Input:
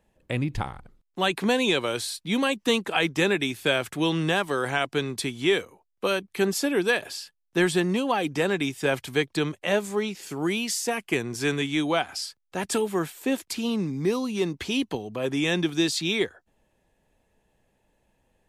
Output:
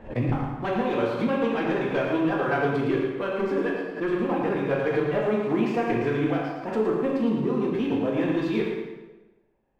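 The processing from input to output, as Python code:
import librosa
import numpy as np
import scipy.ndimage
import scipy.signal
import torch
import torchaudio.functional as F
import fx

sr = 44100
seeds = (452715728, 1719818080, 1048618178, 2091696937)

y = np.minimum(x, 2.0 * 10.0 ** (-16.0 / 20.0) - x)
y = scipy.signal.sosfilt(scipy.signal.butter(2, 1600.0, 'lowpass', fs=sr, output='sos'), y)
y = fx.peak_eq(y, sr, hz=89.0, db=-11.5, octaves=0.5)
y = fx.leveller(y, sr, passes=1)
y = fx.rider(y, sr, range_db=10, speed_s=0.5)
y = fx.stretch_vocoder(y, sr, factor=0.53)
y = fx.echo_feedback(y, sr, ms=112, feedback_pct=30, wet_db=-7.0)
y = fx.rev_plate(y, sr, seeds[0], rt60_s=1.1, hf_ratio=0.8, predelay_ms=0, drr_db=-2.5)
y = fx.pre_swell(y, sr, db_per_s=140.0)
y = y * 10.0 ** (-5.0 / 20.0)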